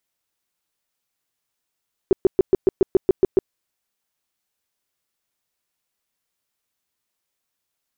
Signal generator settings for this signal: tone bursts 380 Hz, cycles 7, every 0.14 s, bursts 10, -9.5 dBFS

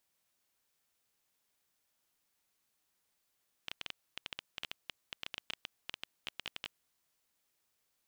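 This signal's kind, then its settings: random clicks 11 per s -21.5 dBFS 3.11 s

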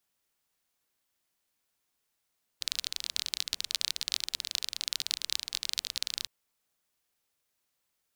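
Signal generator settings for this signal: rain from filtered ticks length 3.66 s, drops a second 27, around 4.1 kHz, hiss -27 dB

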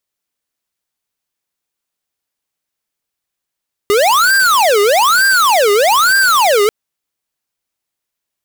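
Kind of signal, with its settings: siren wail 404–1590 Hz 1.1 per s square -10.5 dBFS 2.79 s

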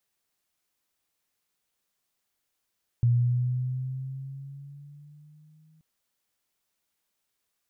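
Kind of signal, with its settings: gliding synth tone sine, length 2.78 s, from 119 Hz, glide +5 st, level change -39.5 dB, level -17.5 dB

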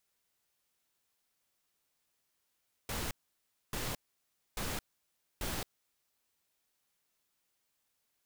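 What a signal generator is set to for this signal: noise bursts pink, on 0.22 s, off 0.62 s, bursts 4, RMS -37 dBFS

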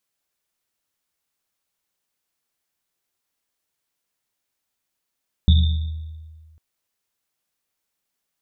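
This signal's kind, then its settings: Risset drum, pitch 79 Hz, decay 1.70 s, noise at 3.6 kHz, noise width 240 Hz, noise 15%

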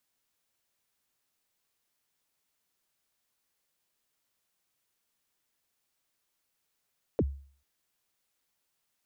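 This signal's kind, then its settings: kick drum length 0.44 s, from 570 Hz, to 69 Hz, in 45 ms, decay 0.47 s, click off, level -20 dB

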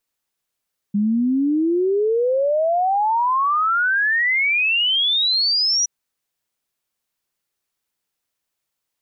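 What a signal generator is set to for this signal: log sweep 200 Hz -> 5.9 kHz 4.92 s -15.5 dBFS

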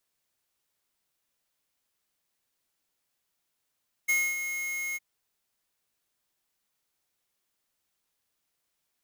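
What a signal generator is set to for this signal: ADSR square 2.16 kHz, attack 16 ms, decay 256 ms, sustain -9 dB, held 0.88 s, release 29 ms -24 dBFS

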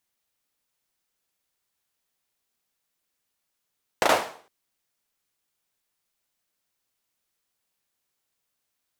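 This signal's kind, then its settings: hand clap length 0.46 s, bursts 3, apart 36 ms, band 690 Hz, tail 0.47 s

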